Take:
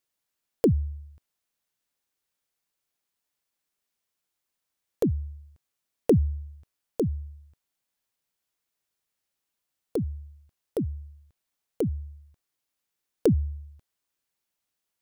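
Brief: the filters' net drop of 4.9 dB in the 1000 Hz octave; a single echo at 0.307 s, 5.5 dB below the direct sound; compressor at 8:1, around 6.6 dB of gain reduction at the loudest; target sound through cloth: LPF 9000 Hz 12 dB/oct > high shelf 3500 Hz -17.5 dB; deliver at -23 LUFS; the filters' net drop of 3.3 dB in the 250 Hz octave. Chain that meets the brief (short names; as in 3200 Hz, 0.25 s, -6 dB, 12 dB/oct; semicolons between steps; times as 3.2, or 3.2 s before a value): bell 250 Hz -4 dB; bell 1000 Hz -5.5 dB; compressor 8:1, threshold -25 dBFS; LPF 9000 Hz 12 dB/oct; high shelf 3500 Hz -17.5 dB; echo 0.307 s -5.5 dB; gain +12 dB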